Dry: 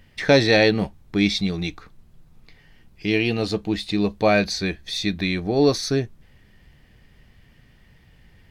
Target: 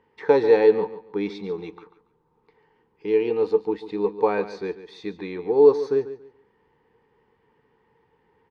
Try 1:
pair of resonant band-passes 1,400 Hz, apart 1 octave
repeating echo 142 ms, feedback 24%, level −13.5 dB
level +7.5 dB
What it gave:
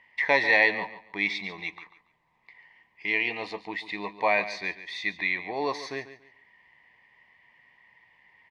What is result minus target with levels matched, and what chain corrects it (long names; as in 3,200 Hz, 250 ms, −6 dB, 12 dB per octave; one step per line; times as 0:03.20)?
500 Hz band −8.5 dB
pair of resonant band-passes 640 Hz, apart 1 octave
repeating echo 142 ms, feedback 24%, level −13.5 dB
level +7.5 dB